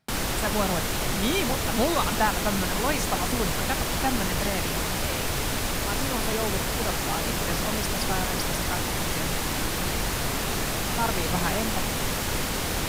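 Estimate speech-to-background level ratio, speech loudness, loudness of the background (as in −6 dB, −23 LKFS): −4.5 dB, −31.5 LKFS, −27.0 LKFS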